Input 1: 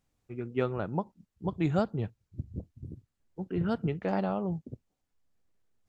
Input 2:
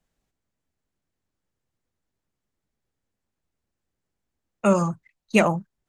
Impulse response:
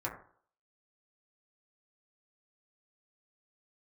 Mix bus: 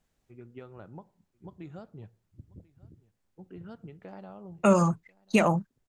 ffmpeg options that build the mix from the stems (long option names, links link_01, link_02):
-filter_complex "[0:a]acompressor=threshold=-30dB:ratio=6,volume=-11.5dB,asplit=3[link_01][link_02][link_03];[link_02]volume=-19dB[link_04];[link_03]volume=-21.5dB[link_05];[1:a]volume=1.5dB[link_06];[2:a]atrim=start_sample=2205[link_07];[link_04][link_07]afir=irnorm=-1:irlink=0[link_08];[link_05]aecho=0:1:1040:1[link_09];[link_01][link_06][link_08][link_09]amix=inputs=4:normalize=0,alimiter=limit=-11dB:level=0:latency=1:release=189"